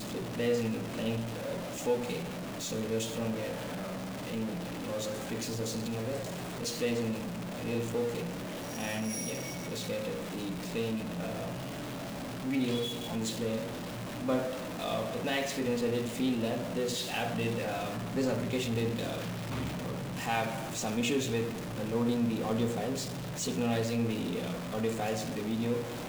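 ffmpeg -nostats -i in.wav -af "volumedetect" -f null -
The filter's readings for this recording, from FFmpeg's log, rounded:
mean_volume: -33.5 dB
max_volume: -17.5 dB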